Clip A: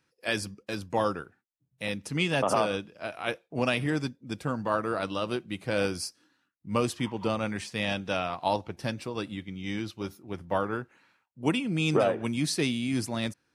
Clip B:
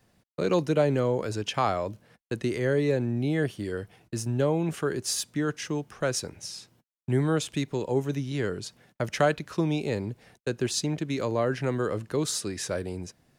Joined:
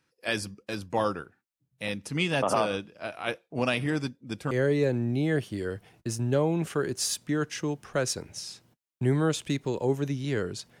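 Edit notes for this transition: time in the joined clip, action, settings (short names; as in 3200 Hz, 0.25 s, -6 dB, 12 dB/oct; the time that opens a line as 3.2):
clip A
4.51 switch to clip B from 2.58 s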